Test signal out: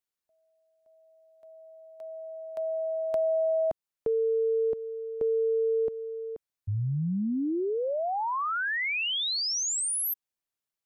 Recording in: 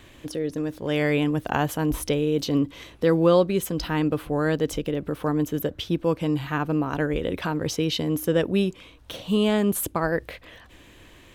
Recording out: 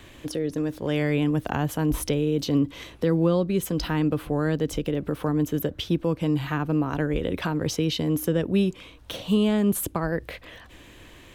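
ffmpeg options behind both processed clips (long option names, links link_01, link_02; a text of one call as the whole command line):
ffmpeg -i in.wav -filter_complex "[0:a]acrossover=split=290[link_01][link_02];[link_02]acompressor=threshold=-29dB:ratio=3[link_03];[link_01][link_03]amix=inputs=2:normalize=0,volume=2dB" out.wav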